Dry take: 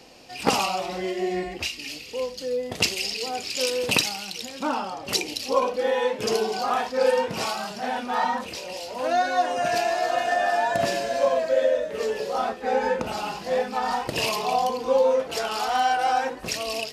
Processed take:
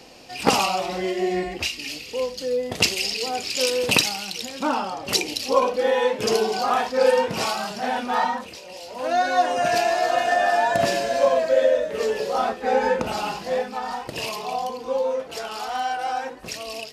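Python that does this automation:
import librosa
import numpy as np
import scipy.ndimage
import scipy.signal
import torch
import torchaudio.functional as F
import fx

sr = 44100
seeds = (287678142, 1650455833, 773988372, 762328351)

y = fx.gain(x, sr, db=fx.line((8.17, 3.0), (8.61, -6.0), (9.32, 3.0), (13.31, 3.0), (13.88, -4.0)))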